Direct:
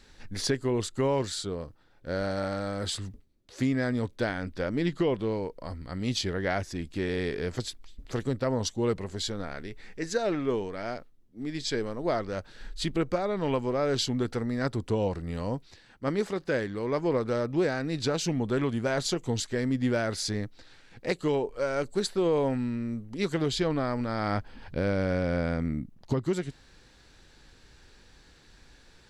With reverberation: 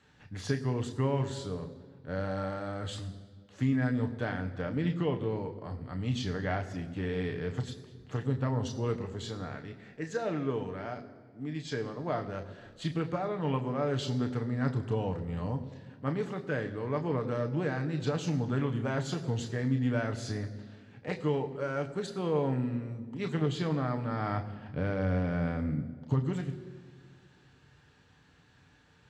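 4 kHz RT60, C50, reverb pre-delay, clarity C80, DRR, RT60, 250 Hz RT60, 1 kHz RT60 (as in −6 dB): 1.2 s, 13.5 dB, 3 ms, 14.5 dB, 5.0 dB, 1.8 s, 2.3 s, 1.7 s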